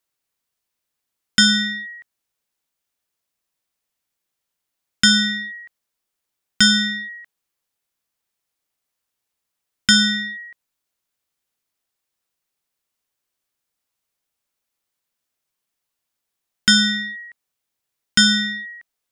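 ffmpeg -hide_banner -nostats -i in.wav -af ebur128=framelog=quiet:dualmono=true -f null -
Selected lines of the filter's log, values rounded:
Integrated loudness:
  I:         -13.5 LUFS
  Threshold: -25.4 LUFS
Loudness range:
  LRA:         4.2 LU
  Threshold: -39.7 LUFS
  LRA low:   -21.1 LUFS
  LRA high:  -16.9 LUFS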